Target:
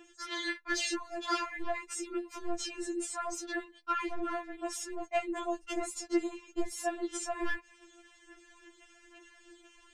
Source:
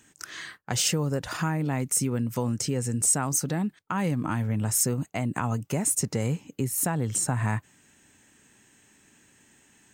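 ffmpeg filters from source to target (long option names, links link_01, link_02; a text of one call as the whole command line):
ffmpeg -i in.wav -filter_complex "[0:a]asettb=1/sr,asplit=3[link_01][link_02][link_03];[link_01]atrim=end=5.304[link_04];[link_02]atrim=start=5.3:end=5.81,asetpts=PTS-STARTPTS,afade=type=in:duration=0.004:curve=qsin,afade=type=out:start_time=0.506:duration=0.004:curve=qsin,acrossover=split=460|3000[link_05][link_06][link_07];[link_06]acompressor=threshold=-35dB:ratio=6[link_08];[link_05][link_08][link_07]amix=inputs=3:normalize=0[link_09];[link_03]atrim=start=5.806[link_10];[link_04][link_09]acrossfade=duration=0.004:curve1=hsin:curve2=qsin[link_11];[link_11][link_10]acrossfade=duration=0.004:curve1=qsin:curve2=hsin,asubboost=boost=2:cutoff=82,acompressor=threshold=-29dB:ratio=6,aphaser=in_gain=1:out_gain=1:delay=3.2:decay=0.65:speed=1.2:type=sinusoidal,lowpass=4300,volume=20.5dB,asoftclip=hard,volume=-20.5dB,asettb=1/sr,asplit=3[link_12][link_13][link_14];[link_12]atrim=end=0.444[link_15];[link_13]atrim=start=0.44:end=1.16,asetpts=PTS-STARTPTS,afade=type=in:duration=0.004:curve=qsin,afade=type=out:start_time=0.716:duration=0.004:curve=qsin,asplit=2[link_16][link_17];[link_17]adelay=15,volume=-2.5dB[link_18];[link_16][link_18]amix=inputs=2:normalize=0,atrim=end_sample=31752[link_19];[link_14]atrim=start=1.156[link_20];[link_15][link_19]acrossfade=duration=0.004:curve1=hsin:curve2=qsin[link_21];[link_21][link_20]acrossfade=duration=0.004:curve1=qsin:curve2=hsin,asoftclip=type=tanh:threshold=-19dB,afftfilt=real='re*4*eq(mod(b,16),0)':imag='im*4*eq(mod(b,16),0)':win_size=2048:overlap=0.75,volume=4dB" out.wav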